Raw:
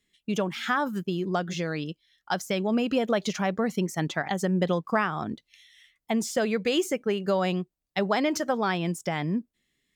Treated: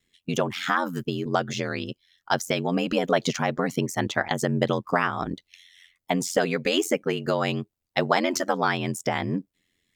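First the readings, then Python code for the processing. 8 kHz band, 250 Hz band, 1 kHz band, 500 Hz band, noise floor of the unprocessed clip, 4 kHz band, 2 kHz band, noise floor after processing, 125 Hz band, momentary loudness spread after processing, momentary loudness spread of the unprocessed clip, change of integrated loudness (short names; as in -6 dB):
+4.0 dB, -0.5 dB, +3.0 dB, +1.5 dB, -83 dBFS, +3.5 dB, +3.5 dB, -82 dBFS, +1.5 dB, 7 LU, 7 LU, +1.5 dB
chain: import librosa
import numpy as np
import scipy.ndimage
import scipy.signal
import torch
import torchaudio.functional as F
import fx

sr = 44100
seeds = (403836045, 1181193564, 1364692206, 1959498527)

y = fx.hpss(x, sr, part='harmonic', gain_db=-5)
y = y * np.sin(2.0 * np.pi * 44.0 * np.arange(len(y)) / sr)
y = y * 10.0 ** (7.5 / 20.0)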